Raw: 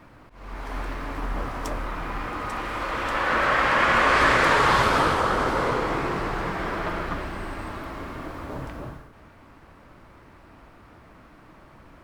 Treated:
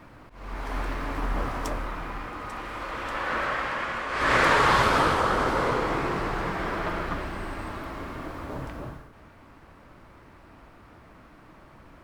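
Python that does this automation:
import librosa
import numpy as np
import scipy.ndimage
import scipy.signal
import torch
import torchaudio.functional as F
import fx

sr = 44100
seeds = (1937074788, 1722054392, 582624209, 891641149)

y = fx.gain(x, sr, db=fx.line((1.52, 1.0), (2.32, -5.5), (3.39, -5.5), (4.08, -13.5), (4.35, -1.0)))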